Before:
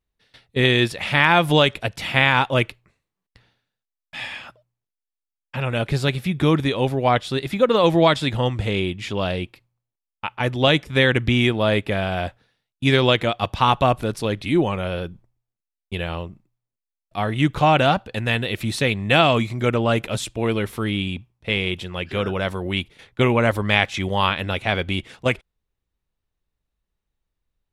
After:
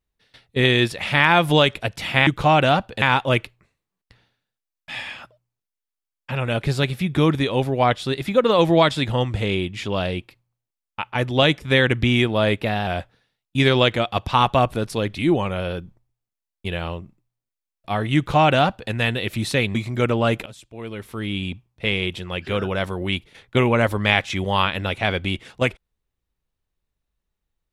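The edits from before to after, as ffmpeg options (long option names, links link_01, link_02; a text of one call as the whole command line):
ffmpeg -i in.wav -filter_complex "[0:a]asplit=7[link_01][link_02][link_03][link_04][link_05][link_06][link_07];[link_01]atrim=end=2.272[link_08];[link_02]atrim=start=17.438:end=18.192[link_09];[link_03]atrim=start=2.268:end=11.874[link_10];[link_04]atrim=start=11.87:end=12.14,asetpts=PTS-STARTPTS,asetrate=48069,aresample=44100[link_11];[link_05]atrim=start=12.136:end=19.022[link_12];[link_06]atrim=start=19.388:end=20.1,asetpts=PTS-STARTPTS,afade=type=out:start_time=0.708:duration=0.004:curve=hsin:silence=0.141254[link_13];[link_07]atrim=start=20.1,asetpts=PTS-STARTPTS,afade=type=in:duration=1.04:curve=qua:silence=0.141254[link_14];[link_08][link_09]acrossfade=duration=0.004:curve1=hsin:curve2=hsin[link_15];[link_15][link_10]acrossfade=duration=0.004:curve1=hsin:curve2=hsin[link_16];[link_16][link_11]acrossfade=duration=0.004:curve1=hsin:curve2=hsin[link_17];[link_17][link_12]acrossfade=duration=0.004:curve1=hsin:curve2=hsin[link_18];[link_13][link_14]concat=n=2:v=0:a=1[link_19];[link_18][link_19]acrossfade=duration=0.004:curve1=hsin:curve2=hsin" out.wav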